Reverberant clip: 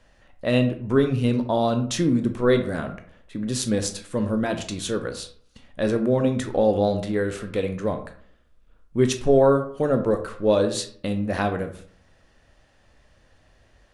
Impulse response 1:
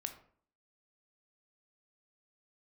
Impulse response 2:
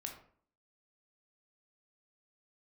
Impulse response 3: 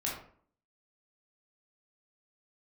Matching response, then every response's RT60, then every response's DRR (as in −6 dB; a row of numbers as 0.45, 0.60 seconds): 1; 0.55, 0.55, 0.55 seconds; 6.5, 2.0, −4.5 decibels